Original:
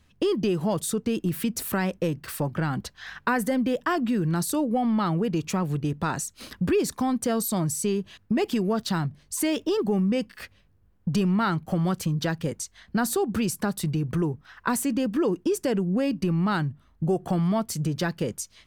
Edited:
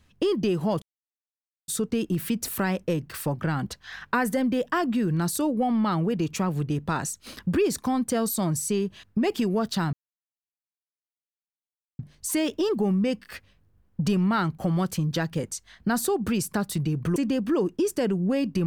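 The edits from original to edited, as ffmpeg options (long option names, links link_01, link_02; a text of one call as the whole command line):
ffmpeg -i in.wav -filter_complex "[0:a]asplit=4[link_01][link_02][link_03][link_04];[link_01]atrim=end=0.82,asetpts=PTS-STARTPTS,afade=type=out:start_time=0.816:duration=0.004:curve=hsin,apad=pad_dur=0.86[link_05];[link_02]atrim=start=0.82:end=9.07,asetpts=PTS-STARTPTS,afade=type=in:duration=0.004:curve=hsin,afade=type=out:start_time=8.246:duration=0.004:curve=hsin,apad=pad_dur=2.06[link_06];[link_03]atrim=start=9.07:end=14.242,asetpts=PTS-STARTPTS,afade=type=in:duration=0.004:curve=hsin[link_07];[link_04]atrim=start=14.828[link_08];[link_05][link_06][link_07]concat=n=3:v=0:a=1[link_09];[link_09][link_08]acrossfade=duration=0.004:curve1=hsin:curve2=hsin" out.wav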